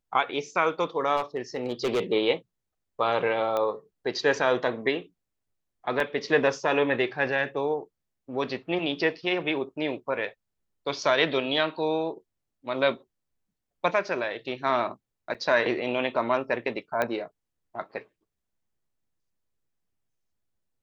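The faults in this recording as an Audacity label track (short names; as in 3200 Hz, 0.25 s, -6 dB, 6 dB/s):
1.160000	2.000000	clipped -21.5 dBFS
3.570000	3.570000	pop -16 dBFS
6.000000	6.000000	gap 2.4 ms
15.340000	15.350000	gap 6.5 ms
17.020000	17.020000	pop -13 dBFS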